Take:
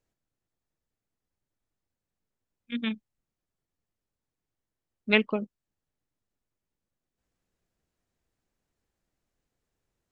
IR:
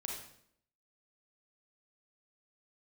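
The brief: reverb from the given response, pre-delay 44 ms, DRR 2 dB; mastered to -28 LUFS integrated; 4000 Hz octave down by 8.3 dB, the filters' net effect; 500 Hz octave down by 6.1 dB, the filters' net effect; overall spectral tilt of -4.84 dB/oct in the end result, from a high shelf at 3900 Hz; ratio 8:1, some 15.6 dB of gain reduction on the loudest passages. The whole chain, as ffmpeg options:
-filter_complex "[0:a]equalizer=f=500:t=o:g=-7.5,highshelf=f=3.9k:g=-5.5,equalizer=f=4k:t=o:g=-9,acompressor=threshold=-36dB:ratio=8,asplit=2[a][b];[1:a]atrim=start_sample=2205,adelay=44[c];[b][c]afir=irnorm=-1:irlink=0,volume=-1.5dB[d];[a][d]amix=inputs=2:normalize=0,volume=13dB"

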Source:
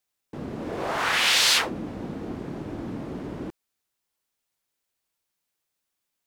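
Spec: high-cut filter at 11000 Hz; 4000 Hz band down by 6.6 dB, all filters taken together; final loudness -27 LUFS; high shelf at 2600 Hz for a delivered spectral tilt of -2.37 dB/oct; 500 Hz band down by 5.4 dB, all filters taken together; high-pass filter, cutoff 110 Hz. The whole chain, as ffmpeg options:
-af "highpass=110,lowpass=11k,equalizer=f=500:t=o:g=-7,highshelf=f=2.6k:g=-4,equalizer=f=4k:t=o:g=-5,volume=2.5dB"

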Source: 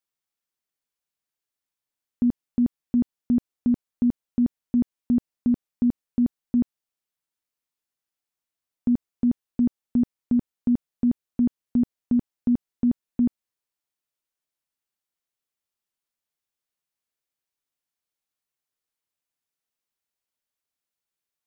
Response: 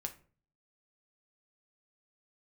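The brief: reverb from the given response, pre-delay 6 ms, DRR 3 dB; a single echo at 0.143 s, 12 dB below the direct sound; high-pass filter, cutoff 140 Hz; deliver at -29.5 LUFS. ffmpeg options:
-filter_complex "[0:a]highpass=140,aecho=1:1:143:0.251,asplit=2[a][b];[1:a]atrim=start_sample=2205,adelay=6[c];[b][c]afir=irnorm=-1:irlink=0,volume=-1.5dB[d];[a][d]amix=inputs=2:normalize=0,volume=-1dB"

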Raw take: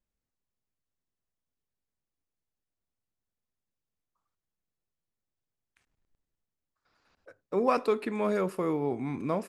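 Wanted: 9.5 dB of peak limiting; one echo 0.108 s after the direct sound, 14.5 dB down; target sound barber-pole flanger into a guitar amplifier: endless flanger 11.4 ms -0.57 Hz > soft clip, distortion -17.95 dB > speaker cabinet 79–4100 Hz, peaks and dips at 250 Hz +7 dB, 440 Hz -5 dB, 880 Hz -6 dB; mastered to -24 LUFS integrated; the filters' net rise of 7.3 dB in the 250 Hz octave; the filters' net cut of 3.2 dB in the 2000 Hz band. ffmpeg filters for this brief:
-filter_complex "[0:a]equalizer=f=250:t=o:g=5,equalizer=f=2k:t=o:g=-4,alimiter=limit=-21dB:level=0:latency=1,aecho=1:1:108:0.188,asplit=2[a][b];[b]adelay=11.4,afreqshift=-0.57[c];[a][c]amix=inputs=2:normalize=1,asoftclip=threshold=-25.5dB,highpass=79,equalizer=f=250:t=q:w=4:g=7,equalizer=f=440:t=q:w=4:g=-5,equalizer=f=880:t=q:w=4:g=-6,lowpass=f=4.1k:w=0.5412,lowpass=f=4.1k:w=1.3066,volume=9.5dB"

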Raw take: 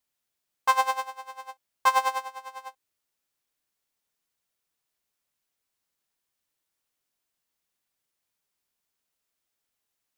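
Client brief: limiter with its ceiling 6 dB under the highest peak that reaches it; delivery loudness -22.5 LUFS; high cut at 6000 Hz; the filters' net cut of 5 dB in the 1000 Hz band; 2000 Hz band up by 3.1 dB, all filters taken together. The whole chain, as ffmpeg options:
-af "lowpass=6k,equalizer=f=1k:t=o:g=-7,equalizer=f=2k:t=o:g=7,volume=10.5dB,alimiter=limit=-5dB:level=0:latency=1"

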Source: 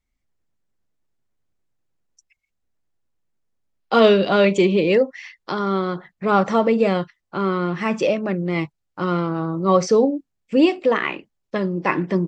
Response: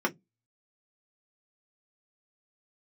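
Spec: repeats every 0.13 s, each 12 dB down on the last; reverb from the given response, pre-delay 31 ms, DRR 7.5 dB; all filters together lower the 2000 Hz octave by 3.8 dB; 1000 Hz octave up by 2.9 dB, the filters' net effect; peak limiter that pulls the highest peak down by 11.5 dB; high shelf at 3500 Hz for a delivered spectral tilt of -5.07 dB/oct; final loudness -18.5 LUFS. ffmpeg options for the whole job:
-filter_complex "[0:a]equalizer=f=1k:t=o:g=6,equalizer=f=2k:t=o:g=-5.5,highshelf=f=3.5k:g=-7.5,alimiter=limit=-14dB:level=0:latency=1,aecho=1:1:130|260|390:0.251|0.0628|0.0157,asplit=2[a][b];[1:a]atrim=start_sample=2205,adelay=31[c];[b][c]afir=irnorm=-1:irlink=0,volume=-17.5dB[d];[a][d]amix=inputs=2:normalize=0,volume=4dB"

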